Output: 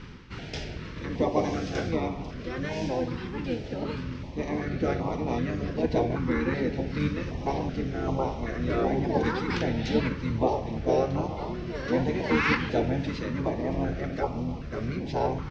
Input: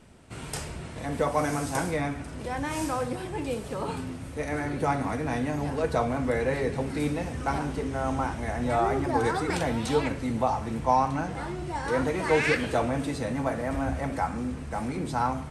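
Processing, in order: steep low-pass 5.8 kHz 48 dB/octave; bass shelf 360 Hz -4 dB; reverse; upward compressor, threshold -33 dBFS; reverse; harmony voices -12 st -3 dB, -7 st -3 dB; on a send: band-passed feedback delay 150 ms, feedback 85%, band-pass 900 Hz, level -17 dB; on the sum: step-sequenced notch 2.6 Hz 660–1600 Hz

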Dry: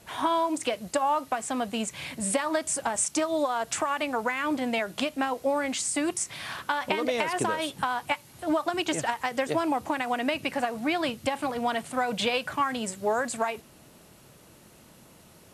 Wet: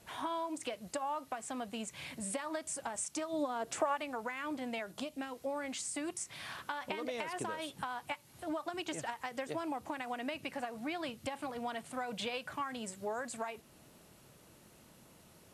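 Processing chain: 4.91–5.43 s: peaking EQ 3 kHz -> 530 Hz -9 dB 0.99 oct; compression 1.5:1, threshold -38 dBFS, peak gain reduction 6.5 dB; 3.32–3.95 s: peaking EQ 160 Hz -> 710 Hz +12 dB 1.4 oct; trim -6.5 dB

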